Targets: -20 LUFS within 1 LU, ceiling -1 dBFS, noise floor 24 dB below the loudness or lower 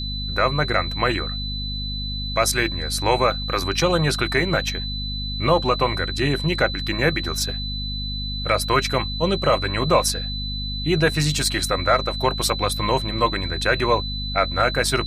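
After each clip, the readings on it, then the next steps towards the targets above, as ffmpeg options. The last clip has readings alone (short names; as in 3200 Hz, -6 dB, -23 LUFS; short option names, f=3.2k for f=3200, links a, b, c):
hum 50 Hz; harmonics up to 250 Hz; hum level -27 dBFS; steady tone 4000 Hz; tone level -29 dBFS; loudness -21.5 LUFS; peak -5.0 dBFS; loudness target -20.0 LUFS
-> -af "bandreject=f=50:t=h:w=6,bandreject=f=100:t=h:w=6,bandreject=f=150:t=h:w=6,bandreject=f=200:t=h:w=6,bandreject=f=250:t=h:w=6"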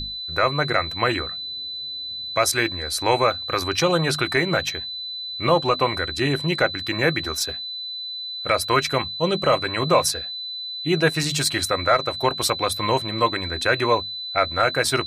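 hum none; steady tone 4000 Hz; tone level -29 dBFS
-> -af "bandreject=f=4k:w=30"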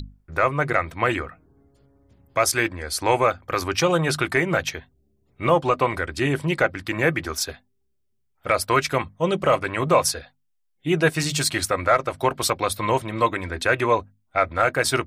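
steady tone none; loudness -22.5 LUFS; peak -6.0 dBFS; loudness target -20.0 LUFS
-> -af "volume=2.5dB"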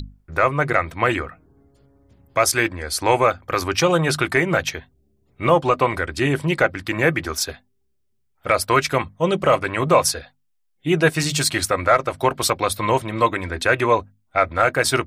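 loudness -20.0 LUFS; peak -3.5 dBFS; noise floor -67 dBFS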